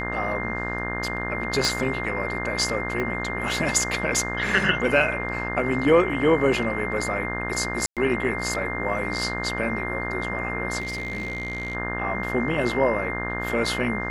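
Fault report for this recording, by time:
buzz 60 Hz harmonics 31 -31 dBFS
whine 2.1 kHz -30 dBFS
1.65 s: pop
3.00 s: pop -16 dBFS
7.86–7.97 s: dropout 107 ms
10.80–11.75 s: clipped -25.5 dBFS

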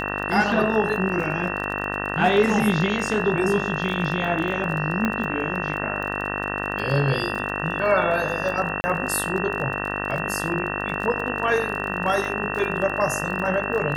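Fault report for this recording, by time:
buzz 50 Hz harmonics 38 -29 dBFS
crackle 27 per s -29 dBFS
whine 2.7 kHz -30 dBFS
5.05 s: pop -11 dBFS
8.81–8.84 s: dropout 30 ms

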